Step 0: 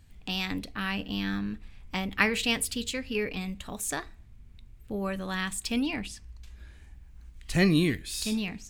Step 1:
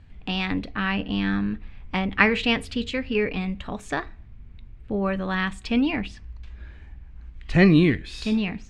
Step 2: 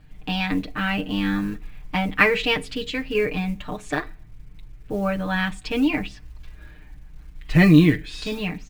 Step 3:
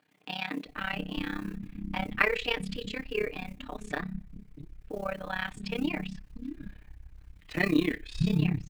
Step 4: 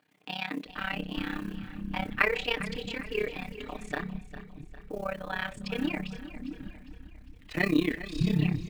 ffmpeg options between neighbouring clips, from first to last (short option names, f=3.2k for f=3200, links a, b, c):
-af "lowpass=2.7k,volume=7dB"
-af "acrusher=bits=8:mode=log:mix=0:aa=0.000001,aecho=1:1:6.6:0.92,volume=-1dB"
-filter_complex "[0:a]acrossover=split=220[a][b];[a]adelay=650[c];[c][b]amix=inputs=2:normalize=0,tremolo=f=33:d=0.889,volume=-4.5dB"
-af "aecho=1:1:403|806|1209|1612:0.2|0.0938|0.0441|0.0207"